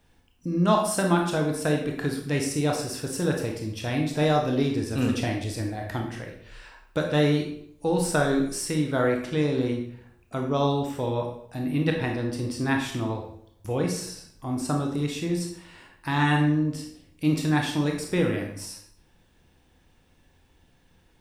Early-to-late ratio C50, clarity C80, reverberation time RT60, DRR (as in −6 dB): 5.0 dB, 8.5 dB, 0.65 s, 1.0 dB